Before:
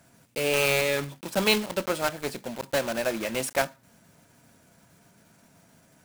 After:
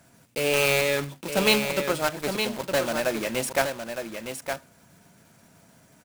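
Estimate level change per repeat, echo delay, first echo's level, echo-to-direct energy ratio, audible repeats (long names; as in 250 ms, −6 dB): repeats not evenly spaced, 913 ms, −7.0 dB, −7.0 dB, 1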